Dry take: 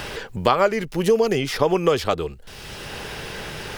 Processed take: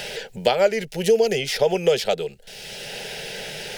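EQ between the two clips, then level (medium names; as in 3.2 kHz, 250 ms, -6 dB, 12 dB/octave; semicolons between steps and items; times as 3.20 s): bass shelf 280 Hz -11 dB; treble shelf 12 kHz -5 dB; static phaser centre 300 Hz, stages 6; +4.5 dB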